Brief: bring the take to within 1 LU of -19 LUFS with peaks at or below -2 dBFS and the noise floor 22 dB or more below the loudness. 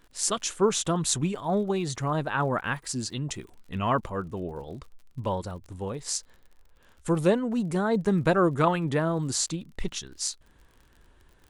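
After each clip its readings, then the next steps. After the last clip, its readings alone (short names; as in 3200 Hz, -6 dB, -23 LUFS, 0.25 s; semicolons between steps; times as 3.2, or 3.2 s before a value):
ticks 52/s; loudness -27.5 LUFS; peak -9.0 dBFS; loudness target -19.0 LUFS
-> de-click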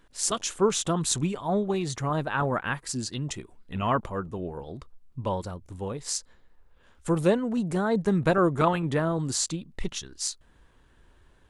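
ticks 0/s; loudness -28.0 LUFS; peak -9.0 dBFS; loudness target -19.0 LUFS
-> gain +9 dB; limiter -2 dBFS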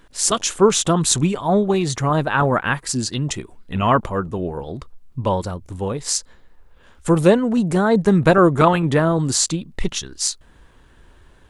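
loudness -19.0 LUFS; peak -2.0 dBFS; noise floor -50 dBFS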